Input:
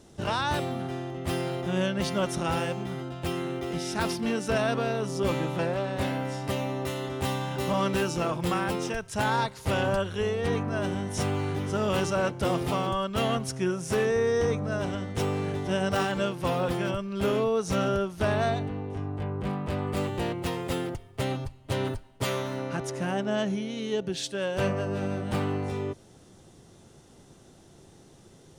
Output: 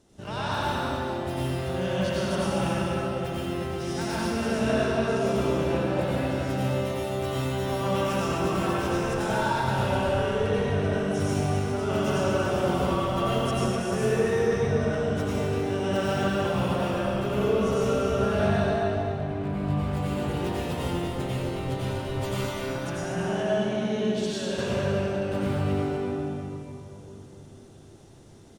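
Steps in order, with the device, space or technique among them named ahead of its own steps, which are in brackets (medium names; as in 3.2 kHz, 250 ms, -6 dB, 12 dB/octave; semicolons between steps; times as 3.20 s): cave (delay 250 ms -8 dB; reverberation RT60 3.1 s, pre-delay 84 ms, DRR -8.5 dB); trim -8.5 dB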